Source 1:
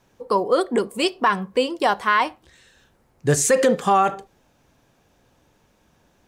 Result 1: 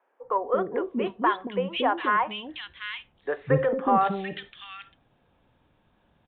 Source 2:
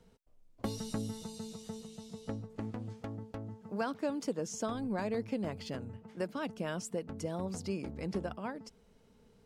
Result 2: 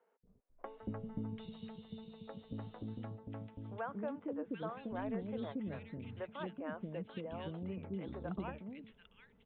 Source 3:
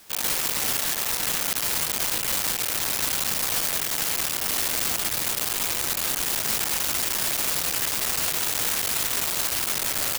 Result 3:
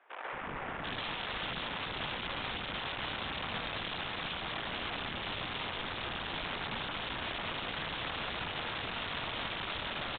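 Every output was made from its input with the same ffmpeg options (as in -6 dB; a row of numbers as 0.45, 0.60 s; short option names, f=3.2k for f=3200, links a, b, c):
-filter_complex "[0:a]acrossover=split=420|2100[a][b][c];[a]adelay=230[d];[c]adelay=740[e];[d][b][e]amix=inputs=3:normalize=0,aresample=8000,aresample=44100,aeval=exprs='0.531*(cos(1*acos(clip(val(0)/0.531,-1,1)))-cos(1*PI/2))+0.0119*(cos(2*acos(clip(val(0)/0.531,-1,1)))-cos(2*PI/2))':c=same,volume=-3.5dB"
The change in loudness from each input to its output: -6.0, -5.0, -14.0 LU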